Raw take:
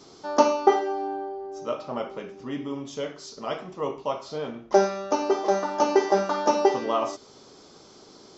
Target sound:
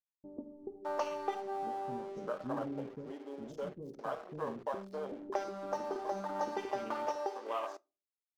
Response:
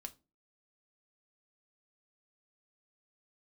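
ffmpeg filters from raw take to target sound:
-filter_complex "[0:a]afwtdn=0.0224,adynamicequalizer=threshold=0.00141:dfrequency=4400:dqfactor=5.4:tfrequency=4400:tqfactor=5.4:attack=5:release=100:ratio=0.375:range=1.5:mode=boostabove:tftype=bell,acrossover=split=3200[link_01][link_02];[link_01]acompressor=threshold=-31dB:ratio=5[link_03];[link_03][link_02]amix=inputs=2:normalize=0,aeval=exprs='sgn(val(0))*max(abs(val(0))-0.00211,0)':channel_layout=same,acrossover=split=360[link_04][link_05];[link_05]adelay=610[link_06];[link_04][link_06]amix=inputs=2:normalize=0,asplit=2[link_07][link_08];[1:a]atrim=start_sample=2205[link_09];[link_08][link_09]afir=irnorm=-1:irlink=0,volume=-4dB[link_10];[link_07][link_10]amix=inputs=2:normalize=0,volume=-4dB"

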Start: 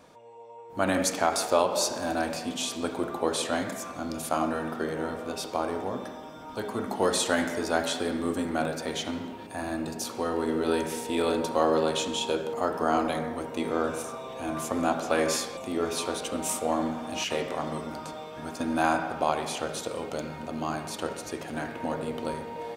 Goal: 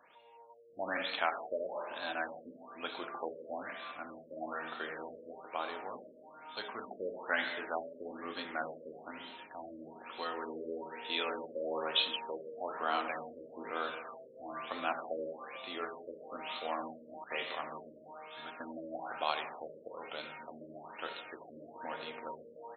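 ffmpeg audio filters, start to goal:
ffmpeg -i in.wav -af "aderivative,afftfilt=real='re*lt(b*sr/1024,600*pow(4300/600,0.5+0.5*sin(2*PI*1.1*pts/sr)))':imag='im*lt(b*sr/1024,600*pow(4300/600,0.5+0.5*sin(2*PI*1.1*pts/sr)))':win_size=1024:overlap=0.75,volume=10.5dB" out.wav

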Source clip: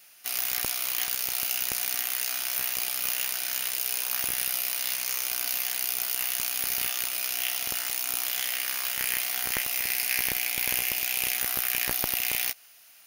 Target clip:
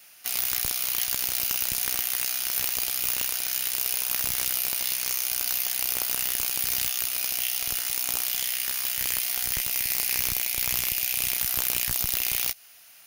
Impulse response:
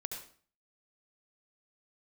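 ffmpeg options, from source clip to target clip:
-filter_complex "[0:a]acrossover=split=170|3000[link_01][link_02][link_03];[link_02]acompressor=threshold=-43dB:ratio=4[link_04];[link_01][link_04][link_03]amix=inputs=3:normalize=0,lowshelf=frequency=120:gain=6,aeval=exprs='(mod(5.01*val(0)+1,2)-1)/5.01':channel_layout=same,volume=2.5dB"

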